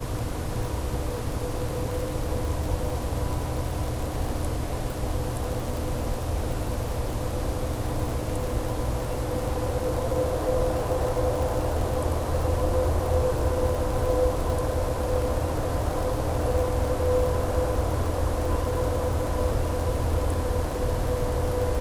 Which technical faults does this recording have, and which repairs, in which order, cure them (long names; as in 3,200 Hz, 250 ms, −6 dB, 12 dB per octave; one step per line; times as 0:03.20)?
surface crackle 43 per second −29 dBFS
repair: click removal